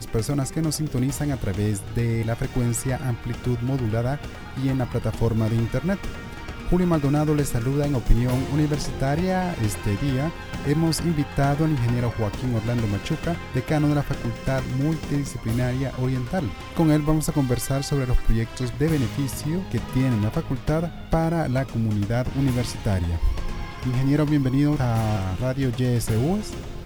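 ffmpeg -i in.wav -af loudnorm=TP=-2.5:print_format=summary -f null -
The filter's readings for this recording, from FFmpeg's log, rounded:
Input Integrated:    -24.2 LUFS
Input True Peak:      -3.2 dBTP
Input LRA:             2.1 LU
Input Threshold:     -34.3 LUFS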